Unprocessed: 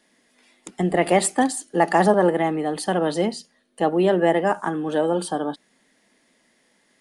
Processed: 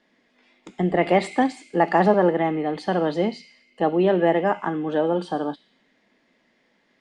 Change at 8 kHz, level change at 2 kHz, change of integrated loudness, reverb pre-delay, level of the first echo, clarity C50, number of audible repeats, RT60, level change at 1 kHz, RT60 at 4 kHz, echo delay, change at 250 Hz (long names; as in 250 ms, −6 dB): below −15 dB, −1.5 dB, −0.5 dB, 4 ms, no echo audible, 7.5 dB, no echo audible, 1.9 s, −0.5 dB, 1.1 s, no echo audible, −0.5 dB